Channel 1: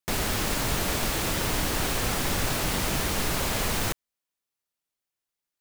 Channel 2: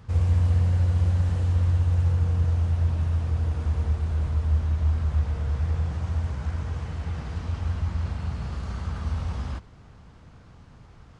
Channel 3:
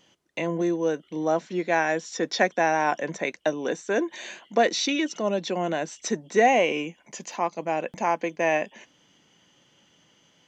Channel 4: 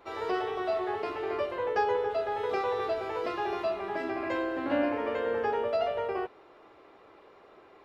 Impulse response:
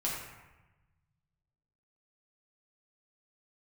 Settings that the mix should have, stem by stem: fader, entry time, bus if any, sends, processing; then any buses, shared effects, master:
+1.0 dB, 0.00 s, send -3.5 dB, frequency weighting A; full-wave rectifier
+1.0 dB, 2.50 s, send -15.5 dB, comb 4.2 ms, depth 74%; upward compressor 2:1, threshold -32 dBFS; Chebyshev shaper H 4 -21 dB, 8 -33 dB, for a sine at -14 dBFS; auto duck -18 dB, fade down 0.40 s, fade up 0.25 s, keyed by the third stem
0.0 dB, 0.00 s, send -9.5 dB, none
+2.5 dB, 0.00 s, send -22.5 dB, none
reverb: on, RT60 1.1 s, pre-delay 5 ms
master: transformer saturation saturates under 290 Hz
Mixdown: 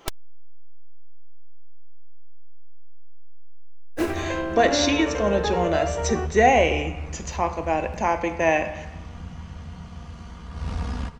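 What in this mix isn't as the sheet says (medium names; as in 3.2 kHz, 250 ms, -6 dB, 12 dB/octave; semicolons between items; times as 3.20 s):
stem 1 +1.0 dB -> +7.5 dB; stem 2: entry 2.50 s -> 1.50 s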